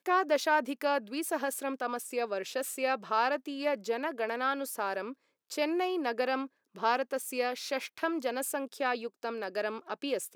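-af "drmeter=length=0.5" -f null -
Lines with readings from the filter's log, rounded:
Channel 1: DR: 11.6
Overall DR: 11.6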